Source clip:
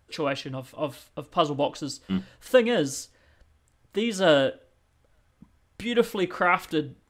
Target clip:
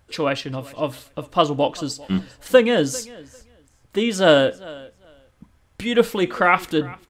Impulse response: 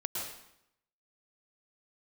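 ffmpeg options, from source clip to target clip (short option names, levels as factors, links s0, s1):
-af "aecho=1:1:397|794:0.0794|0.0135,volume=1.88"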